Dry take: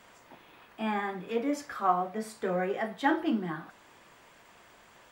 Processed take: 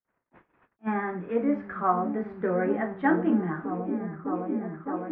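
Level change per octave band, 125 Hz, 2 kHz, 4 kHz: +7.5 dB, +2.0 dB, under -15 dB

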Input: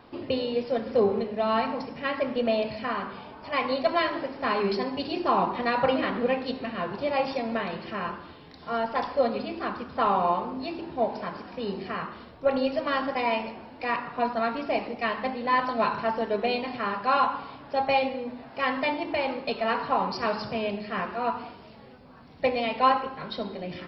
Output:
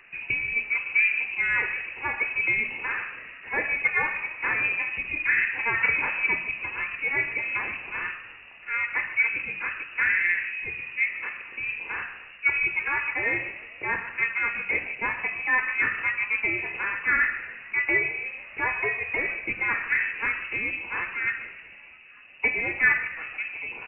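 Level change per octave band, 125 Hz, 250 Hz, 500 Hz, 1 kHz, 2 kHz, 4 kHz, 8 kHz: -5.5 dB, -13.5 dB, -14.5 dB, -9.5 dB, +12.0 dB, under -10 dB, no reading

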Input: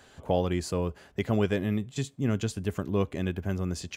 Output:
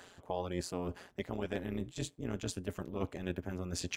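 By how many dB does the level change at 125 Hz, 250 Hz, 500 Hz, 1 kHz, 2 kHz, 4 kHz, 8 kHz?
-11.5 dB, -10.0 dB, -9.5 dB, -7.5 dB, -7.0 dB, -4.5 dB, -2.5 dB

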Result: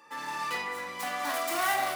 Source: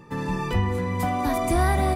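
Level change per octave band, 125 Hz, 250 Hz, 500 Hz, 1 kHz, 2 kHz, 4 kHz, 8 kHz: -32.0 dB, -18.5 dB, -9.5 dB, -4.5 dB, +0.5 dB, +2.0 dB, 0.0 dB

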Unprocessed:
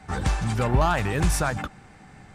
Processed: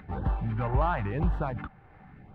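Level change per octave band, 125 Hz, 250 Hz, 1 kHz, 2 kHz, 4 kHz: -4.5 dB, -5.5 dB, -5.0 dB, -10.5 dB, -18.0 dB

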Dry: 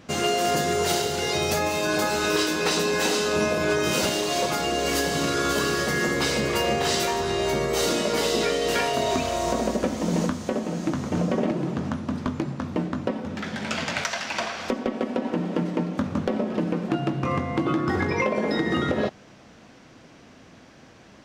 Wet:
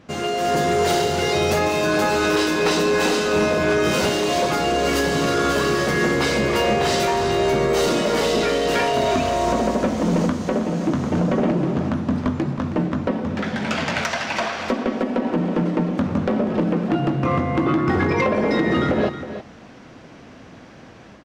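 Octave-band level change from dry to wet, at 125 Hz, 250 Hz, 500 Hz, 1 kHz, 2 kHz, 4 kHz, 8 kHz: +5.5 dB, +5.5 dB, +5.0 dB, +5.0 dB, +3.5 dB, +1.5 dB, -1.0 dB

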